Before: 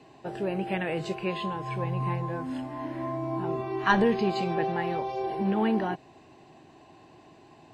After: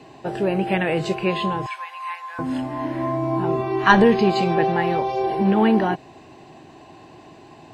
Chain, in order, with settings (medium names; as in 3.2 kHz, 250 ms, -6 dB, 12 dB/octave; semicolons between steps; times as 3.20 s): 1.66–2.39 s: high-pass 1.1 kHz 24 dB/octave; trim +8.5 dB